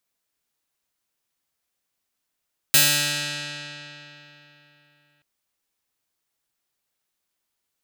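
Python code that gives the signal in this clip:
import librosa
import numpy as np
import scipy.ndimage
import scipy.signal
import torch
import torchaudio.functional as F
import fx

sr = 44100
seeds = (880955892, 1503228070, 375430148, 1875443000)

y = fx.pluck(sr, length_s=2.48, note=50, decay_s=3.57, pick=0.43, brightness='bright')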